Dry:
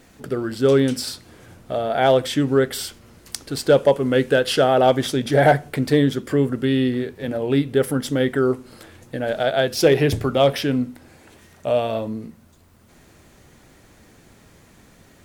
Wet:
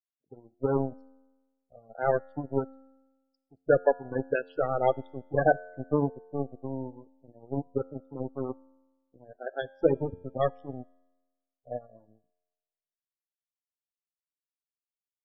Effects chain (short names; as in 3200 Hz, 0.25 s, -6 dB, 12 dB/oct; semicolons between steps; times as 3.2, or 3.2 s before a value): Wiener smoothing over 25 samples; power-law curve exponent 3; in parallel at +0.5 dB: limiter -15 dBFS, peak gain reduction 9.5 dB; on the sum: loudest bins only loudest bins 16; low-pass opened by the level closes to 760 Hz, open at -21.5 dBFS; resonator 89 Hz, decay 1.2 s, harmonics all, mix 40%